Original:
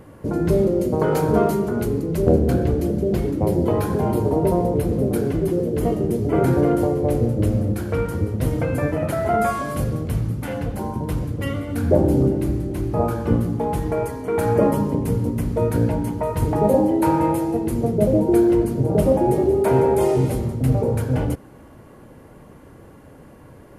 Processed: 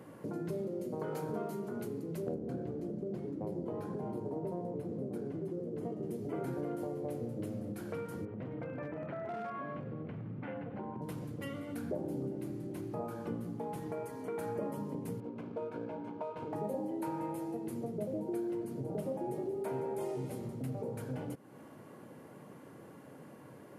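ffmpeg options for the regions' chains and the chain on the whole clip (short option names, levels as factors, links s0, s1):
-filter_complex "[0:a]asettb=1/sr,asplit=3[s0][s1][s2];[s0]atrim=end=2.344[s3];[s1]atrim=start=2.34:end=6.03,asetpts=PTS-STARTPTS,afade=t=in:d=0.004:c=qsin,afade=t=out:st=3.686:d=0.004:c=qsin,equalizer=f=3000:t=o:w=2.6:g=-7.5,adynamicsmooth=sensitivity=6.5:basefreq=5300[s4];[s2]atrim=start=6.026[s5];[s3][s4]acrossfade=d=0.004:c1=hsin:c2=qsin[s6];[s6][s5]acrossfade=d=0.004:c1=qsin:c2=hsin,asettb=1/sr,asplit=3[s7][s8][s9];[s7]atrim=end=8.254[s10];[s8]atrim=start=8.25:end=11.02,asetpts=PTS-STARTPTS,afade=t=in:d=0.004:c=qsin,afade=t=out:st=2.766:d=0.004:c=qsin,lowpass=f=2600:w=0.5412,lowpass=f=2600:w=1.3066,volume=5.31,asoftclip=hard,volume=0.188,acompressor=threshold=0.0794:ratio=6:attack=3.2:release=140:knee=1:detection=peak[s11];[s9]atrim=start=11.016[s12];[s10][s11]acrossfade=d=0.004:c1=hsin:c2=qsin[s13];[s13][s12]acrossfade=d=0.004:c1=qsin:c2=hsin,asettb=1/sr,asplit=3[s14][s15][s16];[s14]atrim=end=15.204[s17];[s15]atrim=start=15.2:end=16.53,asetpts=PTS-STARTPTS,afade=t=in:d=0.004:c=qsin,afade=t=out:st=1.326:d=0.004:c=qsin,adynamicsmooth=sensitivity=6.5:basefreq=1600,asuperstop=centerf=1900:order=4:qfactor=6.9,bass=f=250:g=-12,treble=f=4000:g=-10[s18];[s16]atrim=start=16.526[s19];[s17][s18]acrossfade=d=0.004:c1=hsin:c2=qsin[s20];[s20][s19]acrossfade=d=0.004:c1=qsin:c2=hsin,highpass=f=130:w=0.5412,highpass=f=130:w=1.3066,acompressor=threshold=0.0178:ratio=2.5,volume=0.473"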